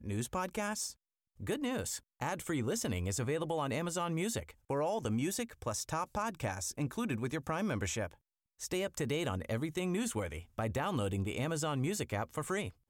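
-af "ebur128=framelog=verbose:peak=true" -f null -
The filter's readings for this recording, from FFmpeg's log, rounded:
Integrated loudness:
  I:         -36.3 LUFS
  Threshold: -46.4 LUFS
Loudness range:
  LRA:         1.6 LU
  Threshold: -56.4 LUFS
  LRA low:   -37.2 LUFS
  LRA high:  -35.6 LUFS
True peak:
  Peak:      -21.8 dBFS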